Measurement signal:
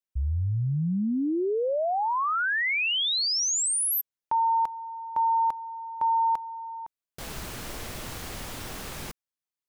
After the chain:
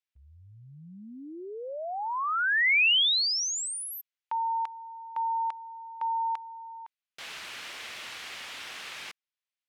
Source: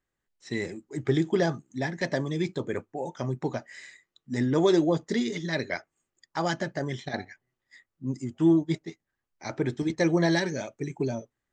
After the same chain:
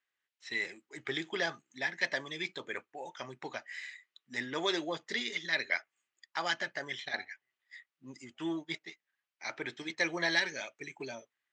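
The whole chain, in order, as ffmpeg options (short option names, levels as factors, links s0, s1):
-af "bandpass=f=2600:t=q:w=1.2:csg=0,volume=1.68"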